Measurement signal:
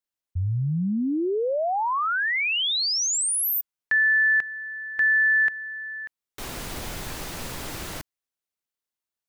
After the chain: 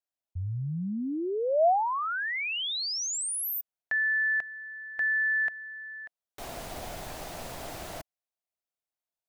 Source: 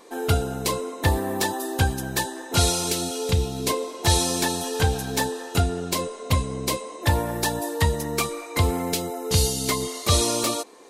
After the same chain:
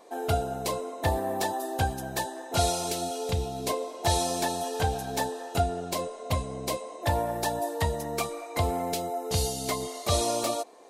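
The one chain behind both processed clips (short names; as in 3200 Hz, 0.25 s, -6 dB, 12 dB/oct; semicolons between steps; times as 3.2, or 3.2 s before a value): bell 680 Hz +12 dB 0.59 oct; gain -7.5 dB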